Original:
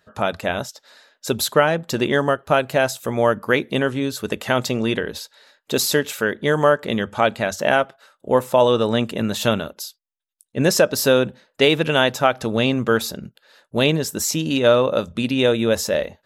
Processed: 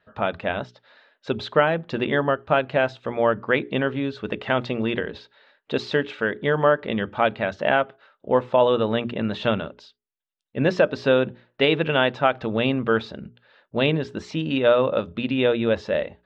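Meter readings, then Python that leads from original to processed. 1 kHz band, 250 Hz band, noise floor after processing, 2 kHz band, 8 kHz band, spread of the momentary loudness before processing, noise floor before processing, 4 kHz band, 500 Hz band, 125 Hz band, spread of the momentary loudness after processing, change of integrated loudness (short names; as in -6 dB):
-2.5 dB, -3.0 dB, -76 dBFS, -2.5 dB, under -25 dB, 10 LU, -72 dBFS, -6.0 dB, -2.5 dB, -3.5 dB, 10 LU, -3.0 dB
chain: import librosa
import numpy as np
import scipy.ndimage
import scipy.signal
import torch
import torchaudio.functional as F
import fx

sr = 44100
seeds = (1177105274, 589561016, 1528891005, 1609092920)

y = scipy.signal.sosfilt(scipy.signal.butter(4, 3400.0, 'lowpass', fs=sr, output='sos'), x)
y = fx.hum_notches(y, sr, base_hz=60, count=7)
y = fx.wow_flutter(y, sr, seeds[0], rate_hz=2.1, depth_cents=17.0)
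y = F.gain(torch.from_numpy(y), -2.5).numpy()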